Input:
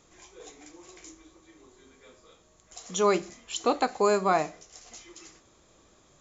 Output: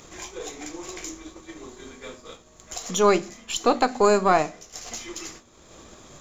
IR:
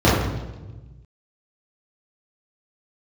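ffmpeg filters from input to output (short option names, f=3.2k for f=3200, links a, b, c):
-filter_complex "[0:a]aeval=exprs='if(lt(val(0),0),0.708*val(0),val(0))':c=same,agate=range=-33dB:threshold=-50dB:ratio=3:detection=peak,acompressor=mode=upward:threshold=-32dB:ratio=2.5,asplit=2[a][b];[b]asuperpass=centerf=240:order=8:qfactor=5.3[c];[1:a]atrim=start_sample=2205,asetrate=83790,aresample=44100[d];[c][d]afir=irnorm=-1:irlink=0,volume=-33.5dB[e];[a][e]amix=inputs=2:normalize=0,volume=6dB"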